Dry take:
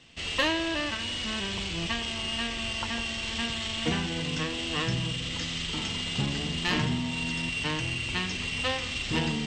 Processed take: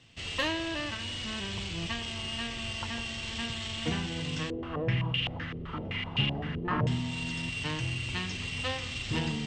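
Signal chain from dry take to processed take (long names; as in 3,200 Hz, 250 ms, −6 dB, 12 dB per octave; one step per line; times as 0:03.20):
parametric band 110 Hz +9 dB 0.67 octaves
0:04.50–0:06.87: low-pass on a step sequencer 7.8 Hz 430–2,800 Hz
level −4.5 dB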